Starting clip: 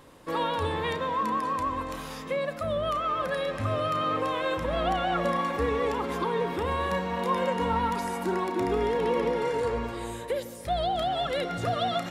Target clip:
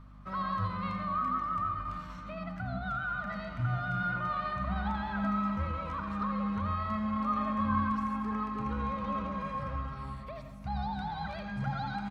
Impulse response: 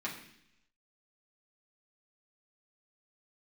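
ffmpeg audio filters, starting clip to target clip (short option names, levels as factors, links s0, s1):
-filter_complex "[0:a]firequalizer=gain_entry='entry(180,0);entry(290,-23);entry(980,-3);entry(1600,-12);entry(10000,-29)':delay=0.05:min_phase=1,asetrate=50951,aresample=44100,atempo=0.865537,aeval=exprs='val(0)+0.00316*(sin(2*PI*50*n/s)+sin(2*PI*2*50*n/s)/2+sin(2*PI*3*50*n/s)/3+sin(2*PI*4*50*n/s)/4+sin(2*PI*5*50*n/s)/5)':c=same,asplit=2[s0][s1];[1:a]atrim=start_sample=2205,adelay=80[s2];[s1][s2]afir=irnorm=-1:irlink=0,volume=0.355[s3];[s0][s3]amix=inputs=2:normalize=0"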